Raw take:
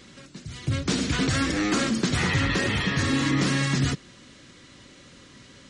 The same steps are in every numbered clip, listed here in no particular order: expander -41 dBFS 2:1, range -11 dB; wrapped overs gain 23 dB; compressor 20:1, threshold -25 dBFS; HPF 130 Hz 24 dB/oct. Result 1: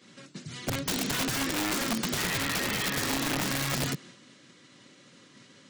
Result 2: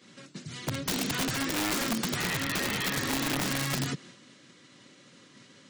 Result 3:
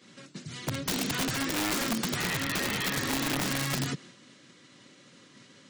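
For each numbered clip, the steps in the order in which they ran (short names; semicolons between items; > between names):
expander > HPF > compressor > wrapped overs; expander > compressor > HPF > wrapped overs; compressor > expander > HPF > wrapped overs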